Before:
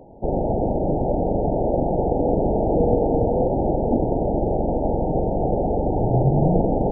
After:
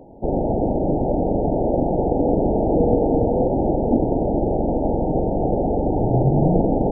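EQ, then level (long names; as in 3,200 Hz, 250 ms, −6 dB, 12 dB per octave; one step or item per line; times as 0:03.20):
parametric band 280 Hz +4 dB 0.77 octaves
0.0 dB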